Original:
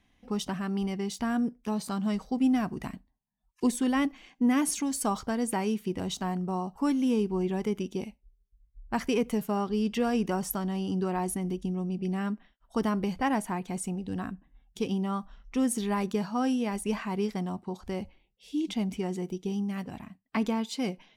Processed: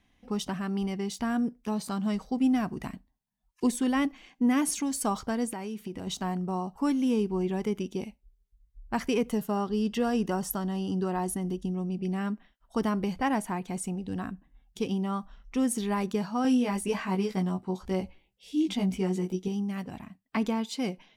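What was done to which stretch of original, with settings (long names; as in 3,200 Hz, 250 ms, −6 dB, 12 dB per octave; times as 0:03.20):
0:05.45–0:06.07: downward compressor, threshold −32 dBFS
0:09.29–0:11.74: notch filter 2,300 Hz, Q 5.7
0:16.43–0:19.48: double-tracking delay 16 ms −2 dB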